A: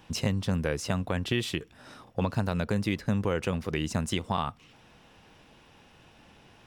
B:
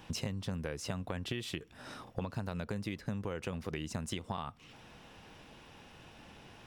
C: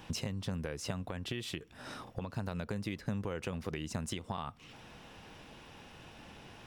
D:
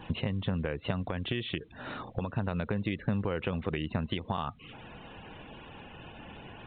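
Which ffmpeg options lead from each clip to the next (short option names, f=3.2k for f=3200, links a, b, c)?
-af "acompressor=threshold=-37dB:ratio=5,volume=1.5dB"
-af "alimiter=level_in=3dB:limit=-24dB:level=0:latency=1:release=319,volume=-3dB,volume=2dB"
-af "afftfilt=real='re*gte(hypot(re,im),0.00224)':imag='im*gte(hypot(re,im),0.00224)':win_size=1024:overlap=0.75,volume=6dB" -ar 8000 -c:a pcm_alaw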